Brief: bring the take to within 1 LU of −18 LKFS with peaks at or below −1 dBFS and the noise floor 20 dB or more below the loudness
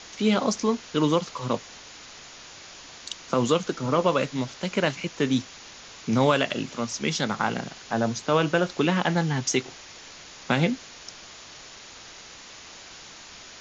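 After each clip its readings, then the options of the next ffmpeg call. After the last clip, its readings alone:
background noise floor −45 dBFS; target noise floor −46 dBFS; integrated loudness −25.5 LKFS; sample peak −9.0 dBFS; target loudness −18.0 LKFS
→ -af "afftdn=noise_reduction=6:noise_floor=-45"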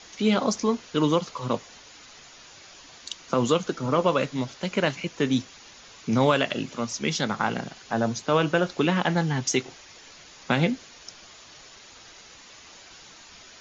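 background noise floor −49 dBFS; integrated loudness −25.5 LKFS; sample peak −9.0 dBFS; target loudness −18.0 LKFS
→ -af "volume=7.5dB"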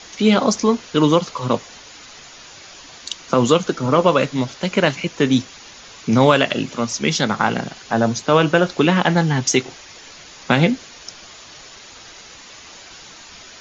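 integrated loudness −18.0 LKFS; sample peak −1.5 dBFS; background noise floor −42 dBFS

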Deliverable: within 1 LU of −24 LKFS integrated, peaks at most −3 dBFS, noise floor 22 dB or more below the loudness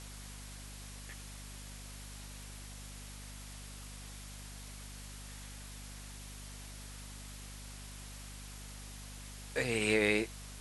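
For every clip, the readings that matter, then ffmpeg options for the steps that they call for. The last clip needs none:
mains hum 50 Hz; hum harmonics up to 250 Hz; level of the hum −47 dBFS; background noise floor −48 dBFS; target noise floor −63 dBFS; integrated loudness −40.5 LKFS; sample peak −14.5 dBFS; target loudness −24.0 LKFS
→ -af "bandreject=frequency=50:width_type=h:width=4,bandreject=frequency=100:width_type=h:width=4,bandreject=frequency=150:width_type=h:width=4,bandreject=frequency=200:width_type=h:width=4,bandreject=frequency=250:width_type=h:width=4"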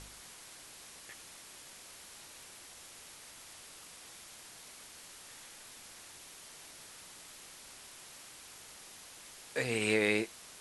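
mains hum none found; background noise floor −53 dBFS; target noise floor −63 dBFS
→ -af "afftdn=noise_reduction=10:noise_floor=-53"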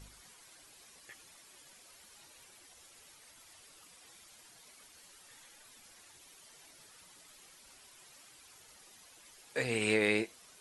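background noise floor −59 dBFS; integrated loudness −32.0 LKFS; sample peak −14.5 dBFS; target loudness −24.0 LKFS
→ -af "volume=8dB"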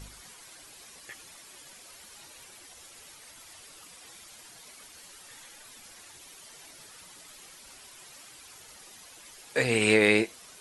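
integrated loudness −24.0 LKFS; sample peak −6.5 dBFS; background noise floor −51 dBFS

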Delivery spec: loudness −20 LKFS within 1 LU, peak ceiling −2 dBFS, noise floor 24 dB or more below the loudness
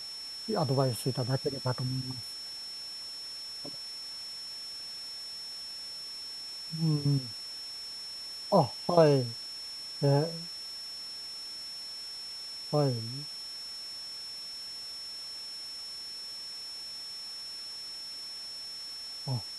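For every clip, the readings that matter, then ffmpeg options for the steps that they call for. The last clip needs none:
interfering tone 5,400 Hz; level of the tone −39 dBFS; background noise floor −42 dBFS; target noise floor −58 dBFS; integrated loudness −34.0 LKFS; sample peak −10.0 dBFS; target loudness −20.0 LKFS
→ -af "bandreject=frequency=5400:width=30"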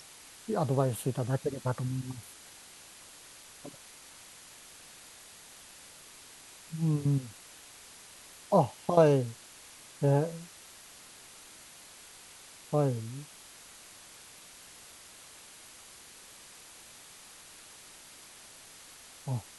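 interfering tone none found; background noise floor −52 dBFS; target noise floor −55 dBFS
→ -af "afftdn=noise_reduction=6:noise_floor=-52"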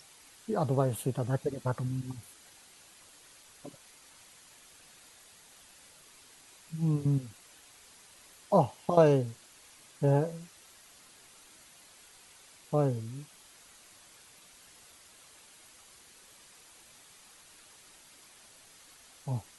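background noise floor −57 dBFS; integrated loudness −30.5 LKFS; sample peak −10.5 dBFS; target loudness −20.0 LKFS
→ -af "volume=10.5dB,alimiter=limit=-2dB:level=0:latency=1"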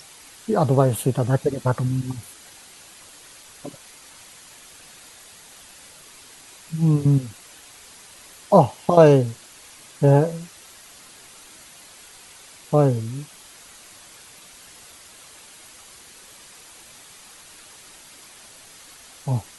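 integrated loudness −20.0 LKFS; sample peak −2.0 dBFS; background noise floor −47 dBFS

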